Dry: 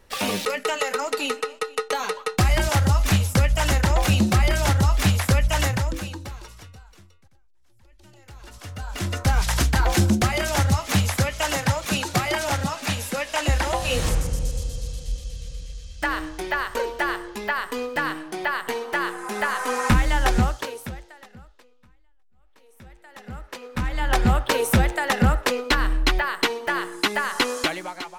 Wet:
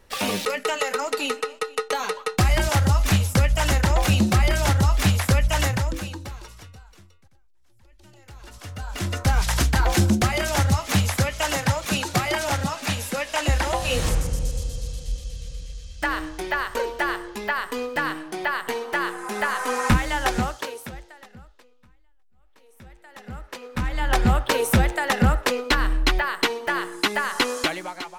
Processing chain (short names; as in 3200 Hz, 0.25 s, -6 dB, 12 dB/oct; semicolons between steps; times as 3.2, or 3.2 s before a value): 19.97–20.94 low shelf 120 Hz -11.5 dB